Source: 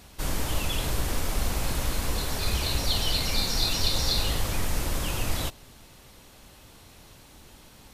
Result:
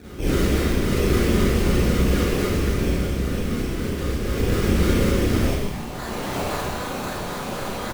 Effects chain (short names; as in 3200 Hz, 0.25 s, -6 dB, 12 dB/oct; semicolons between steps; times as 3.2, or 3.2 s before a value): HPF 44 Hz 12 dB/oct; band shelf 2700 Hz +11.5 dB; compressor, threshold -28 dBFS, peak gain reduction 14.5 dB; low-pass sweep 400 Hz -> 11000 Hz, 5.38–6.8; decimation with a swept rate 21×, swing 60% 3.8 Hz; frequency-shifting echo 0.128 s, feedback 54%, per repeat -110 Hz, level -6.5 dB; Schroeder reverb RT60 0.76 s, combs from 31 ms, DRR -8.5 dB; gain +7 dB